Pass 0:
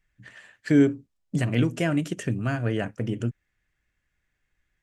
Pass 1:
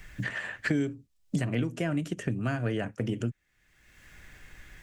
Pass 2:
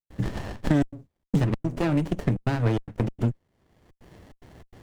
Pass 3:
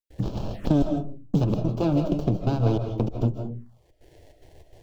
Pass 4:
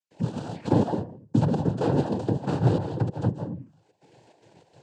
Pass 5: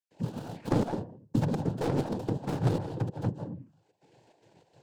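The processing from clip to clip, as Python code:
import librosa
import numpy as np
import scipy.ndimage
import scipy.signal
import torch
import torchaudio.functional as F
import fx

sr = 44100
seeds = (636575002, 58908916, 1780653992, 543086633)

y1 = fx.band_squash(x, sr, depth_pct=100)
y1 = y1 * librosa.db_to_amplitude(-4.5)
y2 = scipy.signal.sosfilt(scipy.signal.butter(4, 65.0, 'highpass', fs=sr, output='sos'), y1)
y2 = fx.step_gate(y2, sr, bpm=146, pattern='.xxxxxxx.xxx.xx', floor_db=-60.0, edge_ms=4.5)
y2 = fx.running_max(y2, sr, window=33)
y2 = y2 * librosa.db_to_amplitude(7.0)
y3 = fx.rev_freeverb(y2, sr, rt60_s=0.43, hf_ratio=0.35, predelay_ms=115, drr_db=5.5)
y3 = fx.env_phaser(y3, sr, low_hz=160.0, high_hz=1900.0, full_db=-25.5)
y3 = fx.dynamic_eq(y3, sr, hz=620.0, q=0.76, threshold_db=-41.0, ratio=4.0, max_db=3)
y4 = fx.noise_vocoder(y3, sr, seeds[0], bands=8)
y5 = fx.tracing_dist(y4, sr, depth_ms=0.3)
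y5 = y5 * librosa.db_to_amplitude(-5.5)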